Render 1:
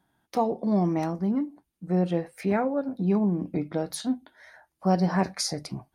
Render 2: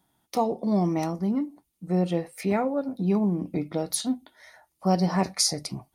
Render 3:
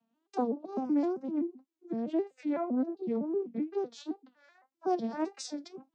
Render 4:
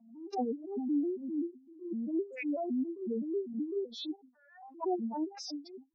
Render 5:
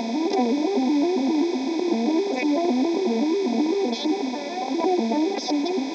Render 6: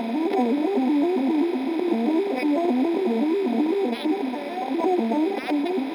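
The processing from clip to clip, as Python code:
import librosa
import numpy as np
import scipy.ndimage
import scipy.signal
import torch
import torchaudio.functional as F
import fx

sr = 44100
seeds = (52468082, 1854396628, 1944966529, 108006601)

y1 = fx.high_shelf(x, sr, hz=3900.0, db=9.0)
y1 = fx.notch(y1, sr, hz=1600.0, q=5.8)
y2 = fx.vocoder_arp(y1, sr, chord='major triad', root=59, every_ms=128)
y2 = fx.wow_flutter(y2, sr, seeds[0], rate_hz=2.1, depth_cents=140.0)
y2 = y2 * librosa.db_to_amplitude(-6.0)
y3 = fx.spec_expand(y2, sr, power=3.6)
y3 = fx.pre_swell(y3, sr, db_per_s=84.0)
y3 = y3 * librosa.db_to_amplitude(-2.0)
y4 = fx.bin_compress(y3, sr, power=0.2)
y4 = y4 * librosa.db_to_amplitude(6.5)
y5 = np.interp(np.arange(len(y4)), np.arange(len(y4))[::6], y4[::6])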